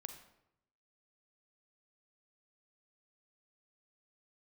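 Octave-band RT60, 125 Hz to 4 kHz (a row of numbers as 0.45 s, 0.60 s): 1.1 s, 0.90 s, 0.85 s, 0.80 s, 0.70 s, 0.55 s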